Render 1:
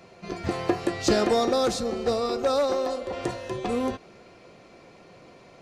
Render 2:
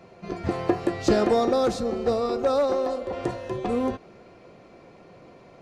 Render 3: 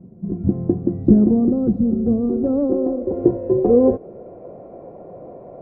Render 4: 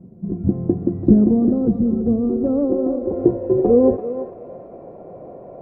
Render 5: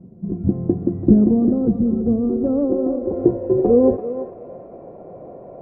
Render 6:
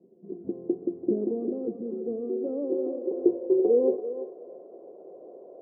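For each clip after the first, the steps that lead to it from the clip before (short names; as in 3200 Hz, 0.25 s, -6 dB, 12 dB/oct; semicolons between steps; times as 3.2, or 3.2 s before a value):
high shelf 2100 Hz -9 dB; gain +2 dB
low-pass sweep 220 Hz -> 620 Hz, 1.95–4.52; gain +7.5 dB
thinning echo 0.336 s, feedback 45%, high-pass 940 Hz, level -4.5 dB
air absorption 110 m
ladder band-pass 450 Hz, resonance 55%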